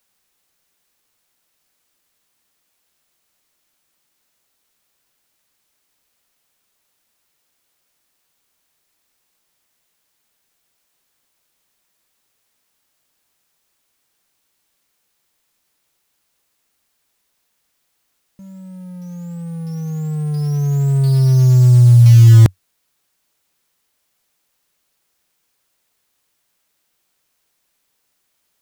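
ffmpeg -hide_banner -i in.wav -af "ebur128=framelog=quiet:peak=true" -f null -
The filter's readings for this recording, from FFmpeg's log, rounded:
Integrated loudness:
  I:         -12.6 LUFS
  Threshold: -31.6 LUFS
Loudness range:
  LRA:        23.4 LU
  Threshold: -41.1 LUFS
  LRA low:   -35.3 LUFS
  LRA high:  -11.9 LUFS
True peak:
  Peak:       -1.3 dBFS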